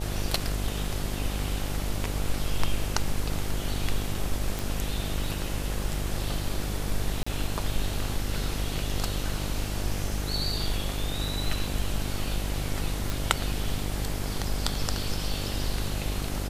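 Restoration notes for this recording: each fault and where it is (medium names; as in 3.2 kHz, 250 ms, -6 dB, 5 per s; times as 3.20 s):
buzz 50 Hz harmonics 17 -32 dBFS
4.59 s: pop
7.23–7.26 s: dropout 35 ms
13.10 s: pop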